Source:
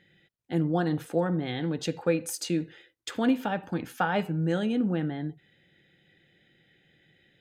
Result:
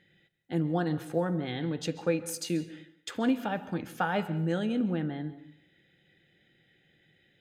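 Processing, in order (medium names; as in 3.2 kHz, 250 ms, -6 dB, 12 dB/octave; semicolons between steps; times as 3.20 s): plate-style reverb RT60 0.64 s, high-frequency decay 0.75×, pre-delay 120 ms, DRR 15 dB; trim -2.5 dB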